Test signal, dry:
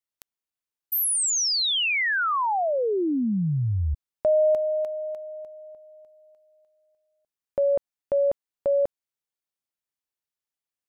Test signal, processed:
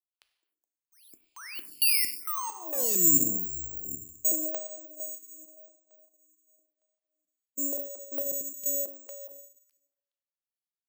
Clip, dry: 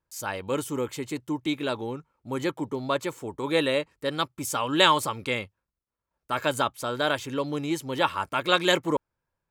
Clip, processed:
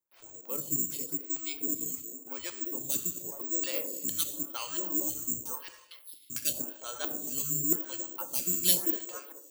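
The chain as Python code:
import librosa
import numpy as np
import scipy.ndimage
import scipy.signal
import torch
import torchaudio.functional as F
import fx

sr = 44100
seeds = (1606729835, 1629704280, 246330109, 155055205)

y = fx.octave_divider(x, sr, octaves=1, level_db=0.0)
y = fx.dereverb_blind(y, sr, rt60_s=0.83)
y = fx.highpass(y, sr, hz=150.0, slope=6)
y = fx.hpss(y, sr, part='harmonic', gain_db=3)
y = fx.peak_eq(y, sr, hz=6600.0, db=3.5, octaves=0.25)
y = fx.echo_stepped(y, sr, ms=210, hz=440.0, octaves=0.7, feedback_pct=70, wet_db=-5)
y = fx.filter_lfo_lowpass(y, sr, shape='square', hz=2.2, low_hz=300.0, high_hz=3100.0, q=3.3)
y = fx.rev_gated(y, sr, seeds[0], gate_ms=340, shape='falling', drr_db=6.5)
y = (np.kron(y[::6], np.eye(6)[0]) * 6)[:len(y)]
y = fx.stagger_phaser(y, sr, hz=0.91)
y = F.gain(torch.from_numpy(y), -14.0).numpy()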